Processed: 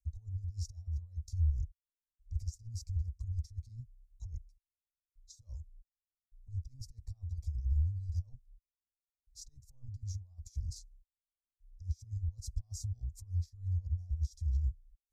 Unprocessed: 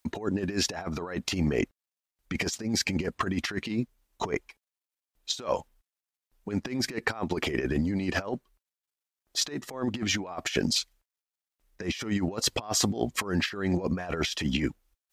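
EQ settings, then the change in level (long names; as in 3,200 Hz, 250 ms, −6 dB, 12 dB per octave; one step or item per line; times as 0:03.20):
inverse Chebyshev band-stop filter 170–3,100 Hz, stop band 40 dB
RIAA equalisation playback
parametric band 2,200 Hz −5.5 dB 2 octaves
−6.5 dB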